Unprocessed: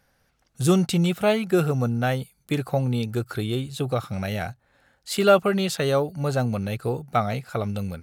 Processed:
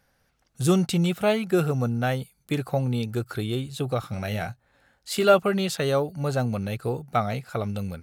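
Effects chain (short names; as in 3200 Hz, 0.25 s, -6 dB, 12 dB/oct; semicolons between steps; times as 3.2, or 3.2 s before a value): 4–5.34 doubler 18 ms -9.5 dB; gain -1.5 dB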